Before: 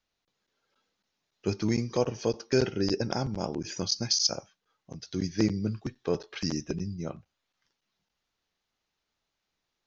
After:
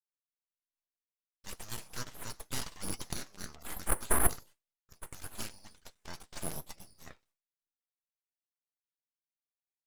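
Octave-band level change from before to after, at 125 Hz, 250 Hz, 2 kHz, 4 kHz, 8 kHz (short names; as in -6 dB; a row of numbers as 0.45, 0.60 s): -12.5 dB, -17.0 dB, -2.5 dB, -14.0 dB, n/a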